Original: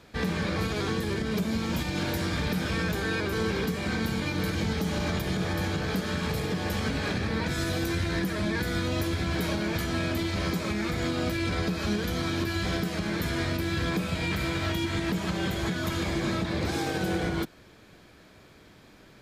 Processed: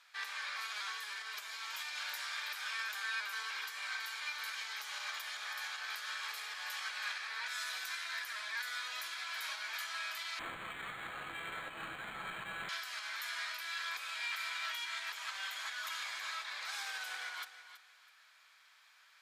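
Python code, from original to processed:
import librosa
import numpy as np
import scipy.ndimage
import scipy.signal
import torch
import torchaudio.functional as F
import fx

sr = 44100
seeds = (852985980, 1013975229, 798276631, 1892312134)

y = scipy.signal.sosfilt(scipy.signal.butter(4, 1100.0, 'highpass', fs=sr, output='sos'), x)
y = fx.high_shelf(y, sr, hz=11000.0, db=-4.0)
y = fx.echo_feedback(y, sr, ms=326, feedback_pct=24, wet_db=-12.5)
y = fx.resample_linear(y, sr, factor=8, at=(10.39, 12.69))
y = F.gain(torch.from_numpy(y), -5.0).numpy()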